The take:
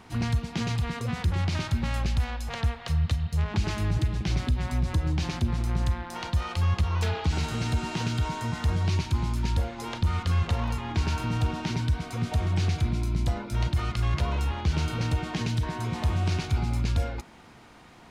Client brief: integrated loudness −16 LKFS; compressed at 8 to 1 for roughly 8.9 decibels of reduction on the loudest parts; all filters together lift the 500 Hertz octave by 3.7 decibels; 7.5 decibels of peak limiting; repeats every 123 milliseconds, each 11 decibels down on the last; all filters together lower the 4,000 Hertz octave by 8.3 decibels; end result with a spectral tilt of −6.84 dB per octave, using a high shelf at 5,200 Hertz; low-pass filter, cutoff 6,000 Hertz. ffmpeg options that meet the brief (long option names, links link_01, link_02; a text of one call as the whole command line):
ffmpeg -i in.wav -af "lowpass=6000,equalizer=frequency=500:width_type=o:gain=5,equalizer=frequency=4000:width_type=o:gain=-8.5,highshelf=frequency=5200:gain=-4.5,acompressor=threshold=-29dB:ratio=8,alimiter=level_in=2.5dB:limit=-24dB:level=0:latency=1,volume=-2.5dB,aecho=1:1:123|246|369:0.282|0.0789|0.0221,volume=20dB" out.wav